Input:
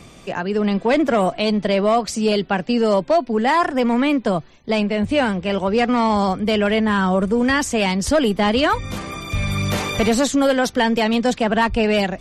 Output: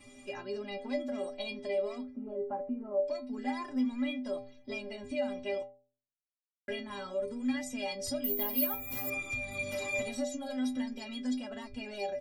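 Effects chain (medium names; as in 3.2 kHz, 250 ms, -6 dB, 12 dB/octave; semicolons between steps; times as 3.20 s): coarse spectral quantiser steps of 15 dB; 2.01–3.05 s: low-pass 1.2 kHz 24 dB/octave; 5.63–6.68 s: mute; comb 3.4 ms, depth 68%; compression, threshold -22 dBFS, peak gain reduction 13 dB; inharmonic resonator 120 Hz, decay 0.62 s, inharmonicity 0.03; 8.24–9.10 s: careless resampling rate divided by 3×, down none, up zero stuff; trim +2.5 dB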